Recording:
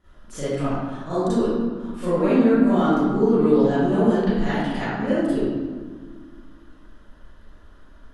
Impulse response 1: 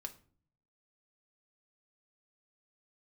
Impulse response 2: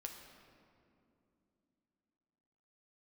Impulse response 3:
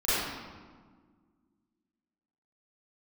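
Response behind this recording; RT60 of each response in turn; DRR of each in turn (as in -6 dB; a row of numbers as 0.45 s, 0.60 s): 3; 0.45 s, 2.8 s, 1.6 s; 4.0 dB, 2.5 dB, -14.5 dB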